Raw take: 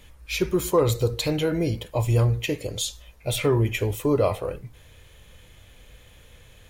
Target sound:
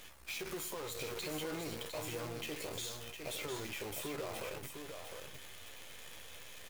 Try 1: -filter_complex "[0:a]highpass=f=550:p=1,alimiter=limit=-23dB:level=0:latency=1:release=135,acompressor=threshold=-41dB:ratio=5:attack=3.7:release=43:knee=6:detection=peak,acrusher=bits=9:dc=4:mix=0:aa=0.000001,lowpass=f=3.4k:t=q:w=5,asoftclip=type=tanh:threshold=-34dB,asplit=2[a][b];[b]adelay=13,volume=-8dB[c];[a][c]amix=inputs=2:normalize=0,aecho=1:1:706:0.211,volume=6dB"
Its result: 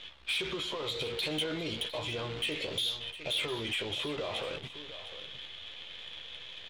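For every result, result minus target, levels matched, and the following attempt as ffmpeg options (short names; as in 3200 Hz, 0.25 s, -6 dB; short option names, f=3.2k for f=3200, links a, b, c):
compressor: peak gain reduction -7 dB; 4000 Hz band +5.5 dB; echo-to-direct -7 dB
-filter_complex "[0:a]highpass=f=550:p=1,alimiter=limit=-23dB:level=0:latency=1:release=135,acompressor=threshold=-49.5dB:ratio=5:attack=3.7:release=43:knee=6:detection=peak,acrusher=bits=9:dc=4:mix=0:aa=0.000001,lowpass=f=3.4k:t=q:w=5,asoftclip=type=tanh:threshold=-34dB,asplit=2[a][b];[b]adelay=13,volume=-8dB[c];[a][c]amix=inputs=2:normalize=0,aecho=1:1:706:0.211,volume=6dB"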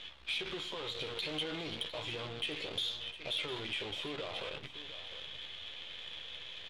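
4000 Hz band +6.0 dB; echo-to-direct -7 dB
-filter_complex "[0:a]highpass=f=550:p=1,alimiter=limit=-23dB:level=0:latency=1:release=135,acompressor=threshold=-49.5dB:ratio=5:attack=3.7:release=43:knee=6:detection=peak,acrusher=bits=9:dc=4:mix=0:aa=0.000001,asoftclip=type=tanh:threshold=-34dB,asplit=2[a][b];[b]adelay=13,volume=-8dB[c];[a][c]amix=inputs=2:normalize=0,aecho=1:1:706:0.211,volume=6dB"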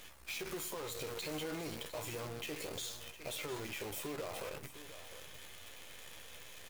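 echo-to-direct -7 dB
-filter_complex "[0:a]highpass=f=550:p=1,alimiter=limit=-23dB:level=0:latency=1:release=135,acompressor=threshold=-49.5dB:ratio=5:attack=3.7:release=43:knee=6:detection=peak,acrusher=bits=9:dc=4:mix=0:aa=0.000001,asoftclip=type=tanh:threshold=-34dB,asplit=2[a][b];[b]adelay=13,volume=-8dB[c];[a][c]amix=inputs=2:normalize=0,aecho=1:1:706:0.473,volume=6dB"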